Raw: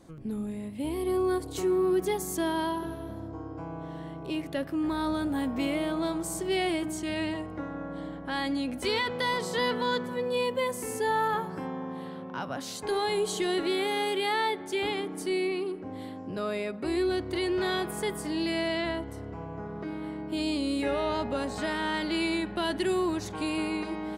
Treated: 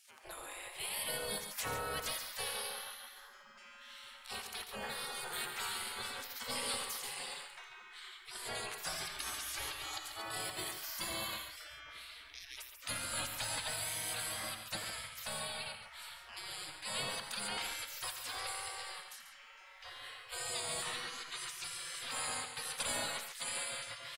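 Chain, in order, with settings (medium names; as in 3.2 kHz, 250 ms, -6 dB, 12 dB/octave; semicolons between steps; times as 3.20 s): spectral gate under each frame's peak -30 dB weak; loudspeakers at several distances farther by 29 m -11 dB, 48 m -9 dB; trim +9 dB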